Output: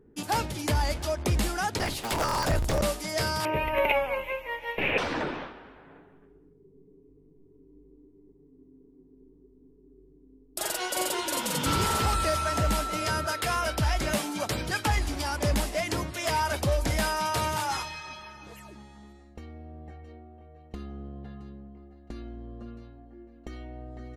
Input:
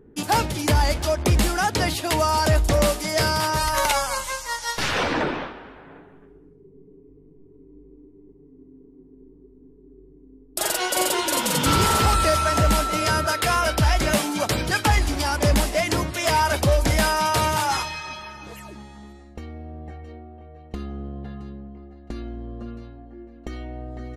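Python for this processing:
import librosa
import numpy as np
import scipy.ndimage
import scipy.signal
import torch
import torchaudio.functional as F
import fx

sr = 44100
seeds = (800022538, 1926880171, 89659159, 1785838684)

y = fx.cycle_switch(x, sr, every=3, mode='inverted', at=(1.78, 2.81), fade=0.02)
y = fx.curve_eq(y, sr, hz=(110.0, 510.0, 1400.0, 2500.0, 4700.0, 9000.0, 13000.0), db=(0, 11, -7, 13, -27, -30, -4), at=(3.45, 4.98))
y = F.gain(torch.from_numpy(y), -7.0).numpy()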